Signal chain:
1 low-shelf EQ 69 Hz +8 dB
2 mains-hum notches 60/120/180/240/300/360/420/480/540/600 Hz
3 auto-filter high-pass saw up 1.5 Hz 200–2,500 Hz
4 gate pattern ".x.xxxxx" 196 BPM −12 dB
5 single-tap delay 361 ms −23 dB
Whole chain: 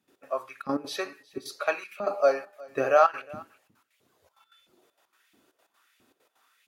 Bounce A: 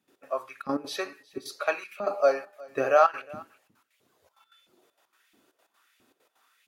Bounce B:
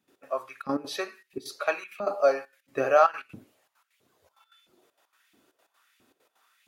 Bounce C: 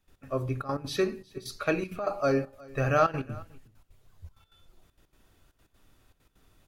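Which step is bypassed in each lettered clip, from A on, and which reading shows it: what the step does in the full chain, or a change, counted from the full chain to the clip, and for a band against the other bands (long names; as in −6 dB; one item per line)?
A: 1, 125 Hz band −1.5 dB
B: 5, change in momentary loudness spread −3 LU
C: 3, 125 Hz band +19.5 dB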